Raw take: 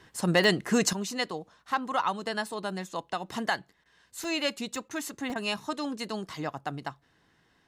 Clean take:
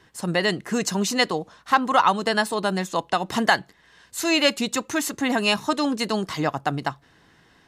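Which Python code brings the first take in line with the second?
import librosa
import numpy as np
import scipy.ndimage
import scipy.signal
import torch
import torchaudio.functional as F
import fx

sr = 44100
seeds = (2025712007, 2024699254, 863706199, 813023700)

y = fx.fix_declip(x, sr, threshold_db=-13.5)
y = fx.fix_interpolate(y, sr, at_s=(0.44, 1.6, 4.24, 4.76, 5.3), length_ms=1.1)
y = fx.fix_interpolate(y, sr, at_s=(3.84, 4.89, 5.34), length_ms=15.0)
y = fx.fix_level(y, sr, at_s=0.93, step_db=10.0)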